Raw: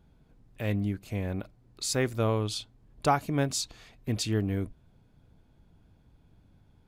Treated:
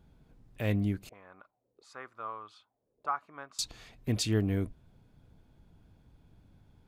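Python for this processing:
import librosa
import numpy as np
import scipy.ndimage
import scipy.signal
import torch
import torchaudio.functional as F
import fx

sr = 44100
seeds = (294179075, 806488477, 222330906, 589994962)

y = fx.auto_wah(x, sr, base_hz=390.0, top_hz=1200.0, q=4.7, full_db=-31.0, direction='up', at=(1.09, 3.59))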